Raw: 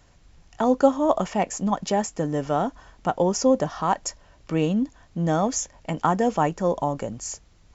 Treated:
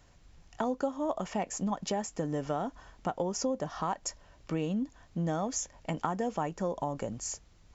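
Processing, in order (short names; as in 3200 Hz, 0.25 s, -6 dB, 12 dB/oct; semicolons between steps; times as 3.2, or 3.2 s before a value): compressor 4:1, threshold -25 dBFS, peak gain reduction 12 dB; gain -4 dB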